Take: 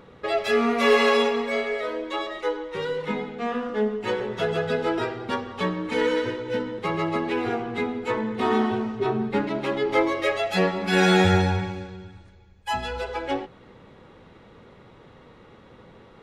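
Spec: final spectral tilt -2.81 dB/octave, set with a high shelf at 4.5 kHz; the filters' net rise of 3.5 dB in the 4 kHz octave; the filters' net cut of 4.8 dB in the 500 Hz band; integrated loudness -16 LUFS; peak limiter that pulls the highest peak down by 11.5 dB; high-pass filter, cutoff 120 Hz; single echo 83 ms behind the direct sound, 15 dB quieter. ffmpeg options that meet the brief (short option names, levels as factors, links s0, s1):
-af "highpass=120,equalizer=f=500:t=o:g=-6,equalizer=f=4000:t=o:g=8,highshelf=f=4500:g=-7.5,alimiter=limit=0.119:level=0:latency=1,aecho=1:1:83:0.178,volume=4.47"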